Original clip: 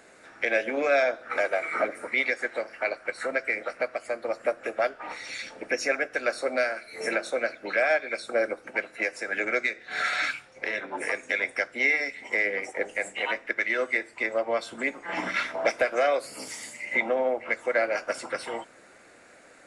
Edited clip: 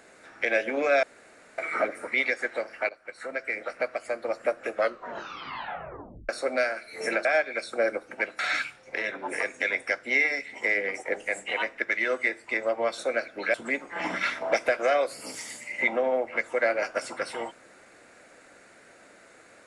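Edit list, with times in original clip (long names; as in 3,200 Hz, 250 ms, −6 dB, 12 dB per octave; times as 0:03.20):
0:01.03–0:01.58: fill with room tone
0:02.89–0:03.86: fade in, from −15.5 dB
0:04.73: tape stop 1.56 s
0:07.25–0:07.81: move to 0:14.67
0:08.95–0:10.08: remove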